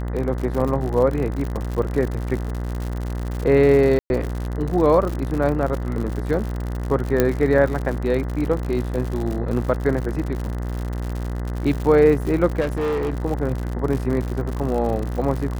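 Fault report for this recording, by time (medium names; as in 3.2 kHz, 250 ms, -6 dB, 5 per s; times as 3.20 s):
buzz 60 Hz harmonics 34 -26 dBFS
crackle 92 per s -26 dBFS
0.60 s: dropout 3.8 ms
3.99–4.10 s: dropout 111 ms
7.20 s: pop -4 dBFS
12.60–13.13 s: clipped -19.5 dBFS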